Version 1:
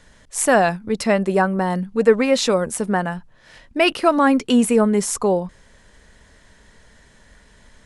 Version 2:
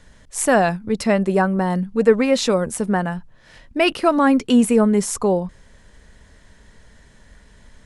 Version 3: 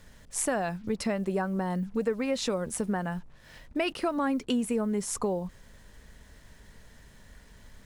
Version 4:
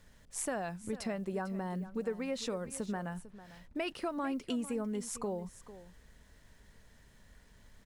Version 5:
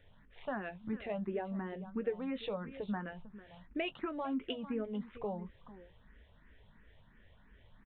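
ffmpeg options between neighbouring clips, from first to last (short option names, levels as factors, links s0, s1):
-af "lowshelf=f=250:g=5.5,volume=0.841"
-af "acompressor=threshold=0.0794:ratio=4,aeval=exprs='val(0)+0.00158*(sin(2*PI*50*n/s)+sin(2*PI*2*50*n/s)/2+sin(2*PI*3*50*n/s)/3+sin(2*PI*4*50*n/s)/4+sin(2*PI*5*50*n/s)/5)':c=same,acrusher=bits=8:mix=0:aa=0.5,volume=0.596"
-af "aecho=1:1:449:0.168,volume=0.422"
-filter_complex "[0:a]asplit=2[s0][s1];[s1]adelay=19,volume=0.224[s2];[s0][s2]amix=inputs=2:normalize=0,aresample=8000,aresample=44100,asplit=2[s3][s4];[s4]afreqshift=2.9[s5];[s3][s5]amix=inputs=2:normalize=1,volume=1.19"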